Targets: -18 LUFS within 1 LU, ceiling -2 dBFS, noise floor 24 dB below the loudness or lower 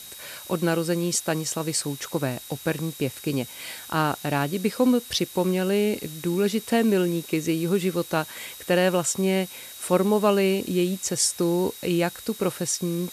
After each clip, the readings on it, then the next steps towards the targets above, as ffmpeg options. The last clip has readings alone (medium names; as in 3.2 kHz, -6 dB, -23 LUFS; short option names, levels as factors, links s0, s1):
steady tone 3.8 kHz; tone level -46 dBFS; noise floor -42 dBFS; noise floor target -49 dBFS; loudness -24.5 LUFS; peak level -7.5 dBFS; loudness target -18.0 LUFS
-> -af "bandreject=f=3800:w=30"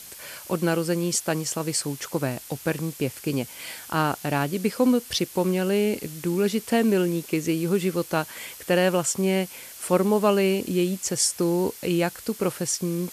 steady tone not found; noise floor -43 dBFS; noise floor target -49 dBFS
-> -af "afftdn=nr=6:nf=-43"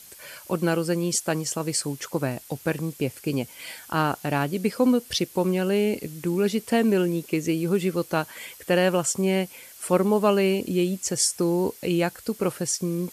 noise floor -47 dBFS; noise floor target -49 dBFS
-> -af "afftdn=nr=6:nf=-47"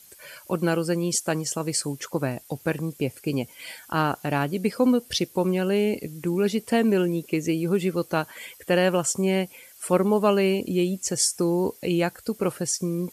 noise floor -51 dBFS; loudness -25.0 LUFS; peak level -7.5 dBFS; loudness target -18.0 LUFS
-> -af "volume=2.24,alimiter=limit=0.794:level=0:latency=1"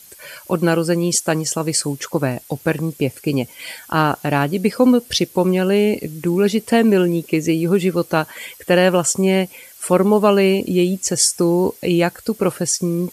loudness -18.0 LUFS; peak level -2.0 dBFS; noise floor -44 dBFS